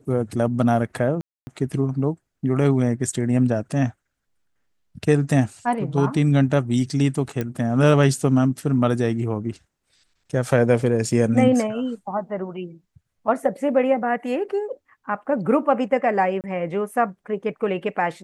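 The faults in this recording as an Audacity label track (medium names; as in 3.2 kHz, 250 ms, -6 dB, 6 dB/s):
1.210000	1.470000	dropout 260 ms
7.410000	7.410000	pop -13 dBFS
16.410000	16.440000	dropout 28 ms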